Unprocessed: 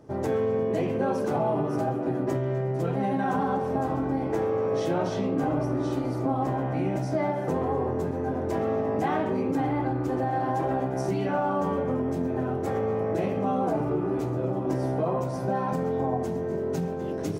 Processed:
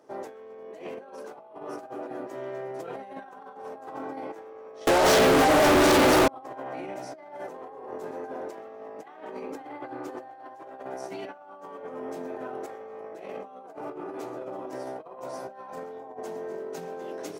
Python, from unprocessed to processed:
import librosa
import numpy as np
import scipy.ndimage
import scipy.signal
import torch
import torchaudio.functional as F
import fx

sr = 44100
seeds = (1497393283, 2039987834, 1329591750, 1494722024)

y = scipy.signal.sosfilt(scipy.signal.butter(2, 480.0, 'highpass', fs=sr, output='sos'), x)
y = fx.over_compress(y, sr, threshold_db=-34.0, ratio=-0.5)
y = fx.fuzz(y, sr, gain_db=49.0, gate_db=-51.0, at=(4.87, 6.28))
y = F.gain(torch.from_numpy(y), -4.0).numpy()